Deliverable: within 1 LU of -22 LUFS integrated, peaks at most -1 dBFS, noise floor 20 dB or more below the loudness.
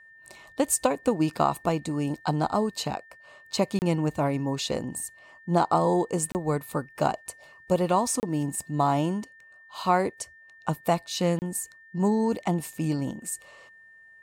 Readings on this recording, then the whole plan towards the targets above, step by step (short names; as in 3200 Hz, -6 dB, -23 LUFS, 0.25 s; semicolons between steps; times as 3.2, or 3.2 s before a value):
dropouts 4; longest dropout 29 ms; steady tone 1800 Hz; tone level -50 dBFS; loudness -27.5 LUFS; peak -8.5 dBFS; loudness target -22.0 LUFS
-> interpolate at 3.79/6.32/8.2/11.39, 29 ms; notch 1800 Hz, Q 30; gain +5.5 dB